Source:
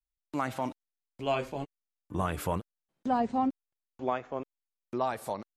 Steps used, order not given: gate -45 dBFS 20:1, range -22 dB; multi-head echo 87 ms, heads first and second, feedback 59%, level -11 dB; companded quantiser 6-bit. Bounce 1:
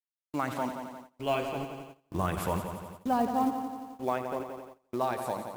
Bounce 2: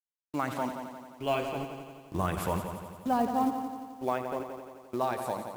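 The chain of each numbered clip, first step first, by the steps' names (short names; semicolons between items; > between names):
multi-head echo > companded quantiser > gate; gate > multi-head echo > companded quantiser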